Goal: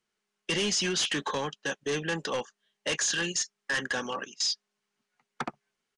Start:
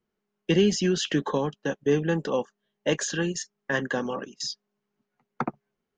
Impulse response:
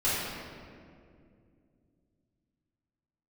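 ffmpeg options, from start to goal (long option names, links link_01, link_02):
-af "tiltshelf=frequency=970:gain=-9,asoftclip=type=hard:threshold=-25dB,aresample=22050,aresample=44100"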